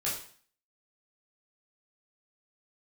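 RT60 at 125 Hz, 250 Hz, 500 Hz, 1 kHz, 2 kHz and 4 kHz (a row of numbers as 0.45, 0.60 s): 0.50, 0.50, 0.50, 0.50, 0.50, 0.50 s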